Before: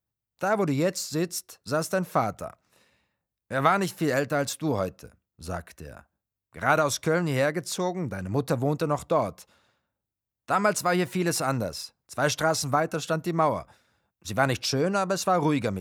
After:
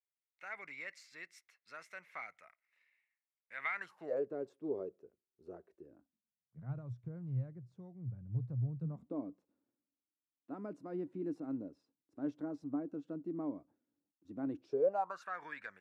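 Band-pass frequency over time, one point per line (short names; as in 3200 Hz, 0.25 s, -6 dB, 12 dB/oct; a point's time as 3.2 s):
band-pass, Q 9
3.74 s 2100 Hz
4.22 s 390 Hz
5.74 s 390 Hz
6.8 s 120 Hz
8.73 s 120 Hz
9.14 s 290 Hz
14.62 s 290 Hz
15.29 s 1700 Hz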